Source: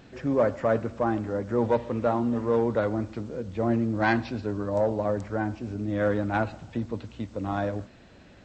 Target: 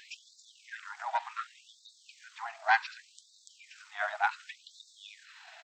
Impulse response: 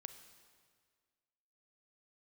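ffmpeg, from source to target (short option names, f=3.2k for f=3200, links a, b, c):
-filter_complex "[0:a]equalizer=f=1.1k:t=o:w=0.37:g=-5,bandreject=f=50:t=h:w=6,bandreject=f=100:t=h:w=6,atempo=1.5,asplit=2[a][b];[b]acompressor=threshold=-35dB:ratio=6,volume=2dB[c];[a][c]amix=inputs=2:normalize=0,afftfilt=real='re*gte(b*sr/1024,620*pow(3600/620,0.5+0.5*sin(2*PI*0.67*pts/sr)))':imag='im*gte(b*sr/1024,620*pow(3600/620,0.5+0.5*sin(2*PI*0.67*pts/sr)))':win_size=1024:overlap=0.75,volume=1dB"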